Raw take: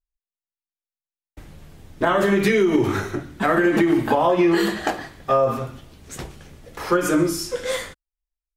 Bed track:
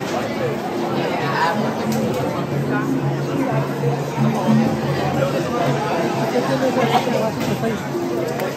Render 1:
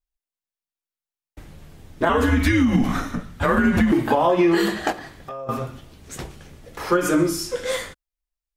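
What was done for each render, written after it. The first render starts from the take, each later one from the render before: 2.09–3.92 frequency shift -120 Hz; 4.92–5.49 compressor 5:1, threshold -32 dBFS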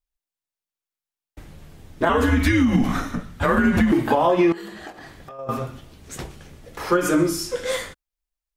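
4.52–5.39 compressor 4:1, threshold -36 dBFS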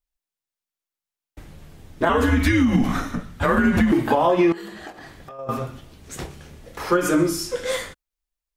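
6.15–6.83 doubler 28 ms -7 dB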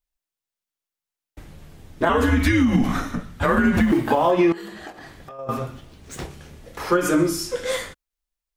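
3.74–4.31 G.711 law mismatch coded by A; 5.73–6.24 median filter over 3 samples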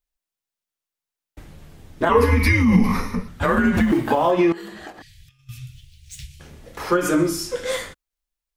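2.11–3.28 ripple EQ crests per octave 0.87, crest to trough 14 dB; 5.02–6.4 inverse Chebyshev band-stop 350–880 Hz, stop band 70 dB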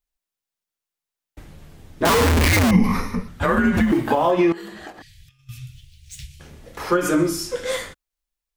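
2.05–2.71 Schmitt trigger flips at -27.5 dBFS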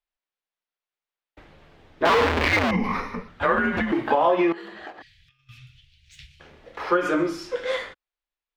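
three-band isolator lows -12 dB, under 340 Hz, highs -23 dB, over 4200 Hz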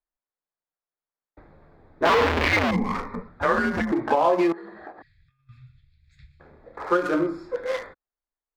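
Wiener smoothing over 15 samples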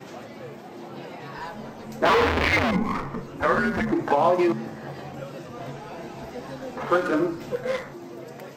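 add bed track -17.5 dB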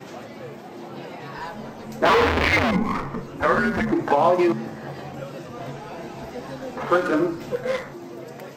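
gain +2 dB

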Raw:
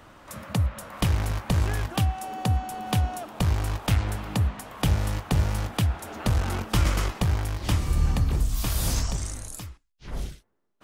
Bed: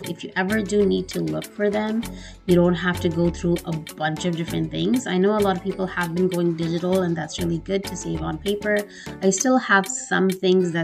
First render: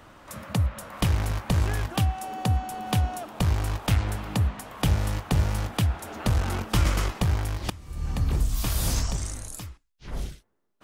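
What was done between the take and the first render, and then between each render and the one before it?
7.7–8.29 fade in quadratic, from -20 dB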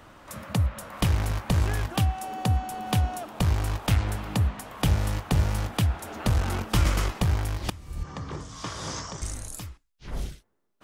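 8.03–9.22 speaker cabinet 180–6300 Hz, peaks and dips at 230 Hz -9 dB, 720 Hz -4 dB, 1100 Hz +5 dB, 2600 Hz -8 dB, 4200 Hz -7 dB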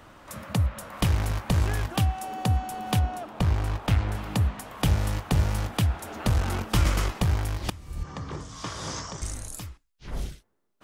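2.99–4.15 high shelf 4900 Hz -9.5 dB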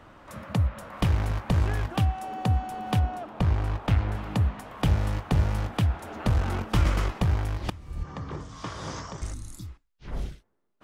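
9.36–9.67 spectral repair 380–3300 Hz after; high shelf 4500 Hz -11.5 dB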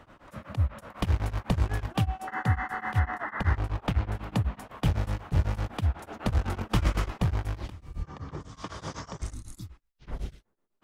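2.27–3.57 painted sound noise 770–2100 Hz -33 dBFS; beating tremolo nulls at 8 Hz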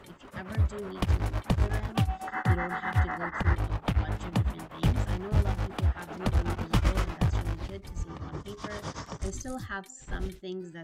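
add bed -20 dB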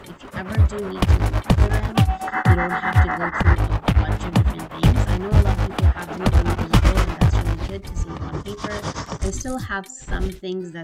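gain +10 dB; limiter -2 dBFS, peak gain reduction 1 dB

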